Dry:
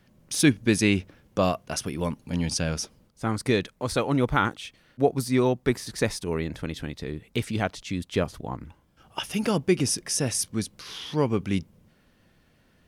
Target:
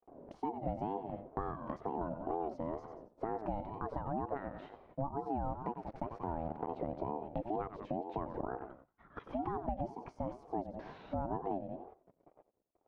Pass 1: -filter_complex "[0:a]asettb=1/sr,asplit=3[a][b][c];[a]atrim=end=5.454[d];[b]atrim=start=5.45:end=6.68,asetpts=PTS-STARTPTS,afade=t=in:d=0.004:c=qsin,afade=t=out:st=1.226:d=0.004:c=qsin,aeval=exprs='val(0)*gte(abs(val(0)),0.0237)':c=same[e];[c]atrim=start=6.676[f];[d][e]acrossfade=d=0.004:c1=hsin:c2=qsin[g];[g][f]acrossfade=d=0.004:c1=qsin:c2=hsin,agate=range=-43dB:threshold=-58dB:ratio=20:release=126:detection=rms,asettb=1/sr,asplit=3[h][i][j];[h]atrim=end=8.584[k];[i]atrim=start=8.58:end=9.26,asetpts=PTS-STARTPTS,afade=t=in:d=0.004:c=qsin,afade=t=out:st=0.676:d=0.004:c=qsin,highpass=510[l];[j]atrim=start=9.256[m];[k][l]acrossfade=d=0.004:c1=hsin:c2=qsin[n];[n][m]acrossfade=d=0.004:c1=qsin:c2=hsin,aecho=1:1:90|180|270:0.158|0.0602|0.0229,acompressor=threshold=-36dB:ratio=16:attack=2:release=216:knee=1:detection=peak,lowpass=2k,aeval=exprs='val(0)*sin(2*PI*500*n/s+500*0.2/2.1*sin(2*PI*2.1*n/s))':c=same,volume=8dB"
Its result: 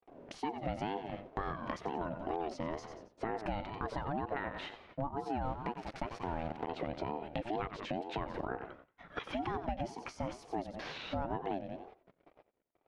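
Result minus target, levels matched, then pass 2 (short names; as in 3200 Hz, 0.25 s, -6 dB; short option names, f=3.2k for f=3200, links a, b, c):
2000 Hz band +10.5 dB
-filter_complex "[0:a]asettb=1/sr,asplit=3[a][b][c];[a]atrim=end=5.454[d];[b]atrim=start=5.45:end=6.68,asetpts=PTS-STARTPTS,afade=t=in:d=0.004:c=qsin,afade=t=out:st=1.226:d=0.004:c=qsin,aeval=exprs='val(0)*gte(abs(val(0)),0.0237)':c=same[e];[c]atrim=start=6.676[f];[d][e]acrossfade=d=0.004:c1=hsin:c2=qsin[g];[g][f]acrossfade=d=0.004:c1=qsin:c2=hsin,agate=range=-43dB:threshold=-58dB:ratio=20:release=126:detection=rms,asettb=1/sr,asplit=3[h][i][j];[h]atrim=end=8.584[k];[i]atrim=start=8.58:end=9.26,asetpts=PTS-STARTPTS,afade=t=in:d=0.004:c=qsin,afade=t=out:st=0.676:d=0.004:c=qsin,highpass=510[l];[j]atrim=start=9.256[m];[k][l]acrossfade=d=0.004:c1=hsin:c2=qsin[n];[n][m]acrossfade=d=0.004:c1=qsin:c2=hsin,aecho=1:1:90|180|270:0.158|0.0602|0.0229,acompressor=threshold=-36dB:ratio=16:attack=2:release=216:knee=1:detection=peak,lowpass=650,aeval=exprs='val(0)*sin(2*PI*500*n/s+500*0.2/2.1*sin(2*PI*2.1*n/s))':c=same,volume=8dB"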